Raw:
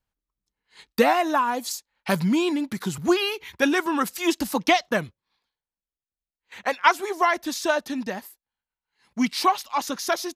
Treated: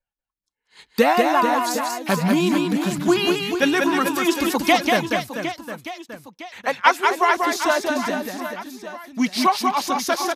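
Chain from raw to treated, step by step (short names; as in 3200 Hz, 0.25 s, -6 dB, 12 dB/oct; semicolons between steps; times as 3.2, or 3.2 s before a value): spectral noise reduction 13 dB; reverse bouncing-ball echo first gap 0.19 s, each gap 1.3×, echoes 5; gain +2 dB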